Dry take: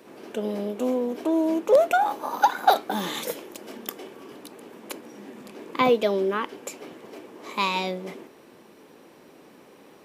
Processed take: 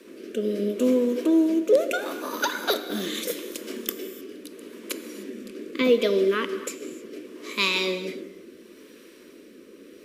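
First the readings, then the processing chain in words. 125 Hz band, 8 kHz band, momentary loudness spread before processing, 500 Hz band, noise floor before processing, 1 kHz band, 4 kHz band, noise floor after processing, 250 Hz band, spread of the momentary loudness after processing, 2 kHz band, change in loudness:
no reading, +4.0 dB, 23 LU, +0.5 dB, -52 dBFS, -11.0 dB, +4.0 dB, -49 dBFS, +3.5 dB, 18 LU, +2.0 dB, -0.5 dB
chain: rotary cabinet horn 0.75 Hz; static phaser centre 330 Hz, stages 4; gated-style reverb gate 330 ms flat, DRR 10 dB; trim +6.5 dB

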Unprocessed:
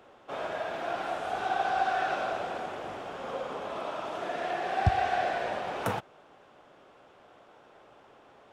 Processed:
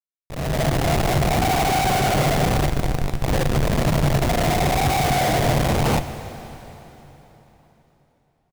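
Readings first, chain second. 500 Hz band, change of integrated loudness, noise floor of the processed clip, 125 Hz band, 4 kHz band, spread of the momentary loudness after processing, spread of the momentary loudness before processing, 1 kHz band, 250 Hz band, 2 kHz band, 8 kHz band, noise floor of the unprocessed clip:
+10.0 dB, +11.5 dB, -67 dBFS, +18.5 dB, +15.0 dB, 10 LU, 10 LU, +7.5 dB, +19.0 dB, +8.5 dB, +23.5 dB, -58 dBFS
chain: tilt EQ +3.5 dB/octave; in parallel at -6 dB: sine folder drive 9 dB, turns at -11.5 dBFS; on the sum: Gaussian low-pass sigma 7.9 samples; on a send: delay 173 ms -21.5 dB; on the sum: Schmitt trigger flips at -27.5 dBFS; level rider gain up to 16 dB; peaking EQ 140 Hz +10 dB 0.3 oct; plate-style reverb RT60 3.8 s, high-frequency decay 0.9×, DRR 10 dB; trim -6.5 dB

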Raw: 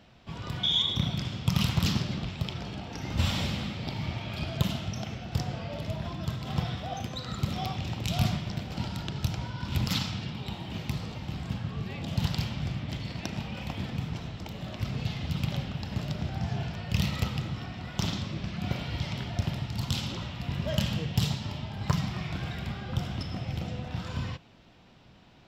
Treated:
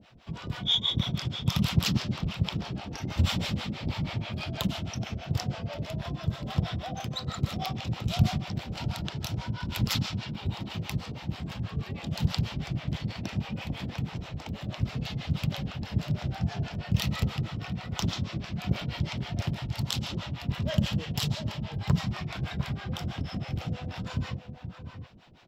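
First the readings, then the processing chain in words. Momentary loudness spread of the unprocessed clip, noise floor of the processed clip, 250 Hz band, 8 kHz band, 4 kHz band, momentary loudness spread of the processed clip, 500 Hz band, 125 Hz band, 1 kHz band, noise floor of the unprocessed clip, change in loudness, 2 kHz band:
8 LU, -44 dBFS, +1.0 dB, +1.0 dB, 0.0 dB, 8 LU, -0.5 dB, +1.0 dB, 0.0 dB, -55 dBFS, +0.5 dB, +0.5 dB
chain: echo from a far wall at 120 m, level -8 dB; harmonic tremolo 6.2 Hz, depth 100%, crossover 510 Hz; trim +4.5 dB

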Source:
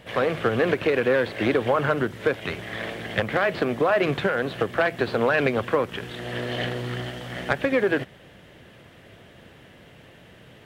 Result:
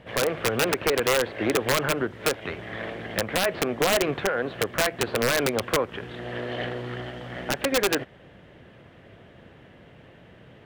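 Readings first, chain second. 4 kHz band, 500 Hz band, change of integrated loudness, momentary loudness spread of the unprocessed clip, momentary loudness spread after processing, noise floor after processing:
+5.0 dB, -2.5 dB, -1.5 dB, 10 LU, 12 LU, -51 dBFS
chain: low-pass 1.9 kHz 6 dB/octave; dynamic bell 150 Hz, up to -6 dB, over -39 dBFS, Q 0.91; integer overflow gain 14.5 dB

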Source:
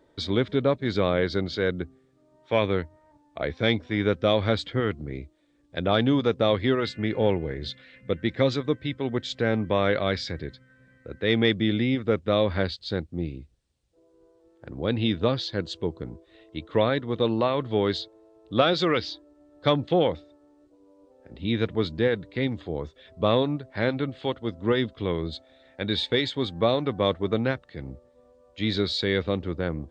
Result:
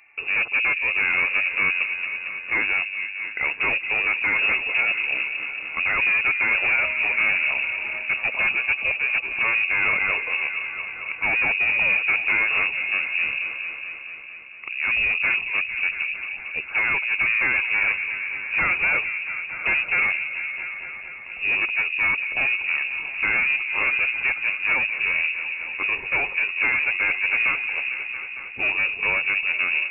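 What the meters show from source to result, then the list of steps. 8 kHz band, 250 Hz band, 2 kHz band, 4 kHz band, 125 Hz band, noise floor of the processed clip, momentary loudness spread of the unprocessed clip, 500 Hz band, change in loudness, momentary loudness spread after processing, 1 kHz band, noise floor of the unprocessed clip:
no reading, -18.0 dB, +16.5 dB, -3.0 dB, under -15 dB, -36 dBFS, 13 LU, -15.5 dB, +5.0 dB, 9 LU, -1.0 dB, -62 dBFS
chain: overload inside the chain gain 26 dB; delay with an opening low-pass 227 ms, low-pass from 400 Hz, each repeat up 1 oct, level -6 dB; frequency inversion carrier 2.7 kHz; trim +7 dB

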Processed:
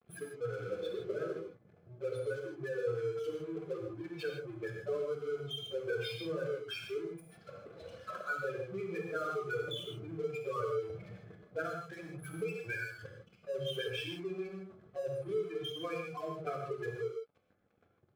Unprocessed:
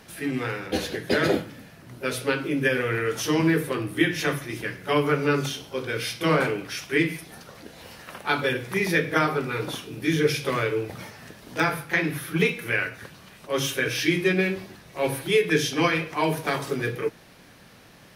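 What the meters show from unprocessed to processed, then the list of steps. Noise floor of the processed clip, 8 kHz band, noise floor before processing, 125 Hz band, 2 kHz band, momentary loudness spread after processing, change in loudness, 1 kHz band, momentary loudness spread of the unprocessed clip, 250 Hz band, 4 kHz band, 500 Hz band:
-69 dBFS, -23.0 dB, -51 dBFS, -15.5 dB, -17.5 dB, 10 LU, -14.0 dB, -15.0 dB, 13 LU, -19.0 dB, -13.0 dB, -10.0 dB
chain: spectral contrast enhancement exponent 3.6; high-pass 54 Hz 12 dB/octave; compression 6:1, threshold -34 dBFS, peak gain reduction 16.5 dB; static phaser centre 1.3 kHz, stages 8; crossover distortion -53 dBFS; comb of notches 940 Hz; gated-style reverb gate 180 ms flat, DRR 1 dB; trim +1 dB

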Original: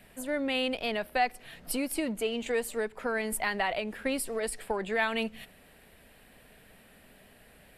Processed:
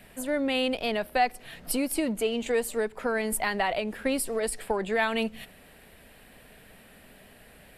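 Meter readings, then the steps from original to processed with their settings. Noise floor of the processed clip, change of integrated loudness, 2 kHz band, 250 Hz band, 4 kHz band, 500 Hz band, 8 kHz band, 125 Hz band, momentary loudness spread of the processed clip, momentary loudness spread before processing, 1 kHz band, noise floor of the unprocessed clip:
-54 dBFS, +3.0 dB, +1.5 dB, +4.0 dB, +2.0 dB, +3.5 dB, +4.0 dB, +4.0 dB, 5 LU, 6 LU, +3.0 dB, -58 dBFS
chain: dynamic bell 2.1 kHz, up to -3 dB, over -44 dBFS, Q 0.77; trim +4 dB

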